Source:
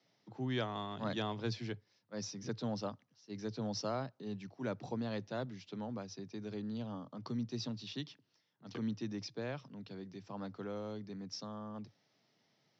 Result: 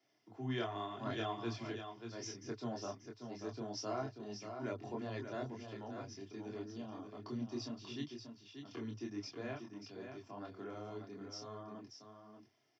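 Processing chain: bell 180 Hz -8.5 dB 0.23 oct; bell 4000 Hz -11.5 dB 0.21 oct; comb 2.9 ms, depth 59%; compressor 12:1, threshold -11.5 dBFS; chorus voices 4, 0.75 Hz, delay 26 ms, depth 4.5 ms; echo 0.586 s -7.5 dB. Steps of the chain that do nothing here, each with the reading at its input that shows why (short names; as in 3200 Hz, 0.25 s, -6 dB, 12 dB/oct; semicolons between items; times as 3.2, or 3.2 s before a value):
compressor, threshold -11.5 dBFS: input peak -24.5 dBFS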